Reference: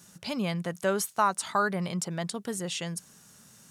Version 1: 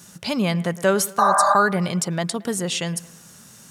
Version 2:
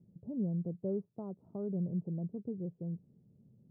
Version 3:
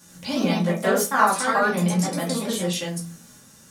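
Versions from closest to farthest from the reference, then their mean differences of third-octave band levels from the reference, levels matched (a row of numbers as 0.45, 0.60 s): 1, 3, 2; 2.0, 6.5, 16.5 dB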